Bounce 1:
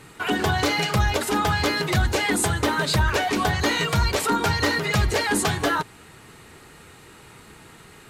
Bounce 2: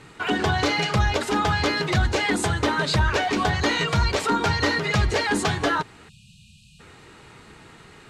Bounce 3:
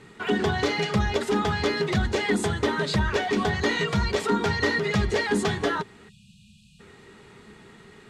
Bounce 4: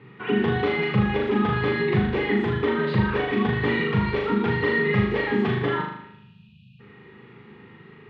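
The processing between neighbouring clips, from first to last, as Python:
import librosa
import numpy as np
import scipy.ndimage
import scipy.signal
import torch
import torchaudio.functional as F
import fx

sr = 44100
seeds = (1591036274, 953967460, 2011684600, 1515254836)

y1 = scipy.signal.sosfilt(scipy.signal.butter(2, 6600.0, 'lowpass', fs=sr, output='sos'), x)
y1 = fx.spec_erase(y1, sr, start_s=6.09, length_s=0.71, low_hz=230.0, high_hz=2400.0)
y2 = fx.small_body(y1, sr, hz=(210.0, 400.0, 1900.0, 3400.0), ring_ms=60, db=10)
y2 = y2 * librosa.db_to_amplitude(-5.0)
y3 = fx.cabinet(y2, sr, low_hz=110.0, low_slope=12, high_hz=2800.0, hz=(120.0, 640.0, 1500.0), db=(9, -10, -5))
y3 = fx.room_flutter(y3, sr, wall_m=6.7, rt60_s=0.75)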